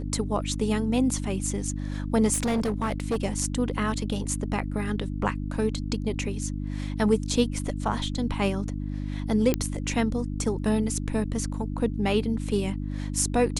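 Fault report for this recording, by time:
mains hum 50 Hz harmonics 6 −31 dBFS
0:02.33–0:03.25: clipping −21.5 dBFS
0:09.54: click −10 dBFS

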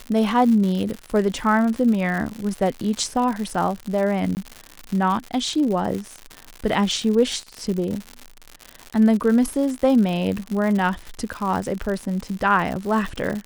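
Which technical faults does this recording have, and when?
surface crackle 130 per second −26 dBFS
0:04.35–0:04.37: drop-out 19 ms

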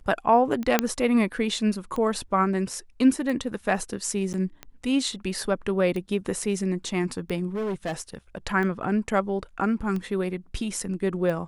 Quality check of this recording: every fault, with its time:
scratch tick 45 rpm −20 dBFS
0:00.79: click −4 dBFS
0:04.33–0:04.34: drop-out 9.4 ms
0:07.54–0:08.15: clipping −25 dBFS

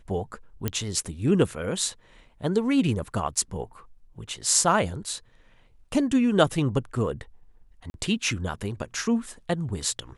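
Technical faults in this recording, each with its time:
0:00.68: click −11 dBFS
0:07.90–0:07.94: drop-out 41 ms

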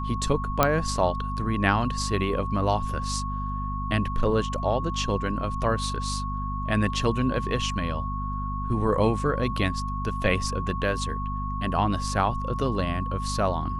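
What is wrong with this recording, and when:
mains hum 50 Hz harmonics 5 −31 dBFS
whistle 1,100 Hz −32 dBFS
0:00.63: click −4 dBFS

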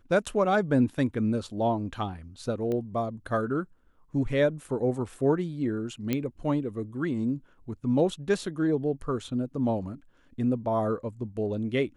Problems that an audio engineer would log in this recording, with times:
0:02.72: click −21 dBFS
0:06.13: click −14 dBFS

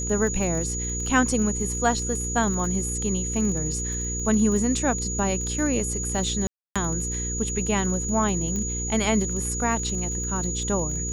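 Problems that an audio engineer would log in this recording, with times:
surface crackle 34 per second −31 dBFS
mains hum 60 Hz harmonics 8 −31 dBFS
whistle 6,800 Hz −29 dBFS
0:06.47–0:06.76: drop-out 286 ms
0:08.56: click −17 dBFS

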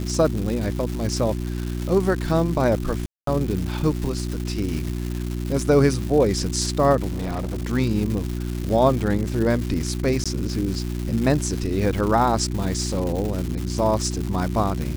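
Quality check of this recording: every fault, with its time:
surface crackle 390 per second −27 dBFS
mains hum 60 Hz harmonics 6 −27 dBFS
0:03.06–0:03.27: drop-out 213 ms
0:07.10–0:07.64: clipping −23 dBFS
0:10.24–0:10.26: drop-out 16 ms

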